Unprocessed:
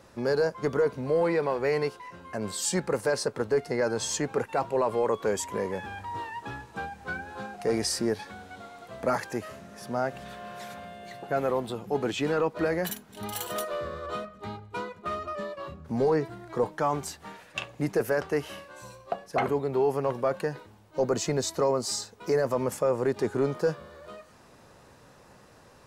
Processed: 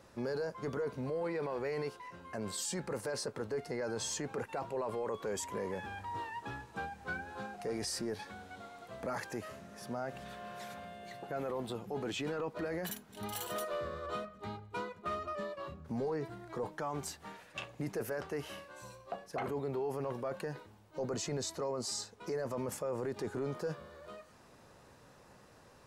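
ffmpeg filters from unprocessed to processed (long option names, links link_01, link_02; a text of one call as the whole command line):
ffmpeg -i in.wav -filter_complex "[0:a]asettb=1/sr,asplit=3[link_01][link_02][link_03];[link_01]atrim=end=21.064[link_04];[link_02]atrim=start=21.06:end=22.56,asetpts=PTS-STARTPTS,afade=type=in:duration=0.004:curve=qsin,afade=type=out:start_time=1.496:duration=0.004:curve=qsin,lowpass=12000[link_05];[link_03]atrim=start=22.556[link_06];[link_04][link_05]acrossfade=duration=0.004:curve1=hsin:curve2=qsin[link_07];[link_07][link_06]acrossfade=duration=0.004:curve1=qsin:curve2=hsin,alimiter=level_in=0.5dB:limit=-24dB:level=0:latency=1:release=11,volume=-0.5dB,volume=-5dB" out.wav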